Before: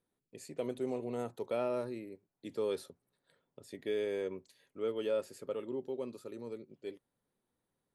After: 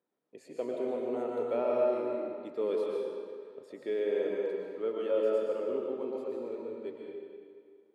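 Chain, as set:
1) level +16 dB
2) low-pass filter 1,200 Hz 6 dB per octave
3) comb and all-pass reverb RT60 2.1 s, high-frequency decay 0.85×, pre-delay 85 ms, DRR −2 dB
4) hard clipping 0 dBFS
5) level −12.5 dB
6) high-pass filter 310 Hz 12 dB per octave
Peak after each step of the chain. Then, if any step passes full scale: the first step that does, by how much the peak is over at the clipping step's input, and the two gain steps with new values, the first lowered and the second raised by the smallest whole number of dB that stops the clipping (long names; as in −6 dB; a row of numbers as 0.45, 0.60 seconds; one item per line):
−7.5, −8.5, −4.5, −4.5, −17.0, −18.0 dBFS
no step passes full scale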